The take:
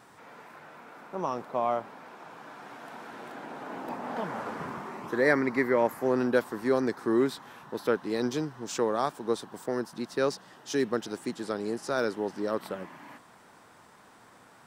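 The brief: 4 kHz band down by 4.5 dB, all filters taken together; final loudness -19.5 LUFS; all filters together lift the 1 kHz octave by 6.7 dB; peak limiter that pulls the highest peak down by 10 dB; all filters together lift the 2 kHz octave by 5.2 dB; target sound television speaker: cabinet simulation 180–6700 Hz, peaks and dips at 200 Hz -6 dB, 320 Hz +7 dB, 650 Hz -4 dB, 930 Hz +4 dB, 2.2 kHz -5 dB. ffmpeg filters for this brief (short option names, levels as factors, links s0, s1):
-af "equalizer=f=1000:t=o:g=5,equalizer=f=2000:t=o:g=7.5,equalizer=f=4000:t=o:g=-7.5,alimiter=limit=0.158:level=0:latency=1,highpass=f=180:w=0.5412,highpass=f=180:w=1.3066,equalizer=f=200:t=q:w=4:g=-6,equalizer=f=320:t=q:w=4:g=7,equalizer=f=650:t=q:w=4:g=-4,equalizer=f=930:t=q:w=4:g=4,equalizer=f=2200:t=q:w=4:g=-5,lowpass=f=6700:w=0.5412,lowpass=f=6700:w=1.3066,volume=3.16"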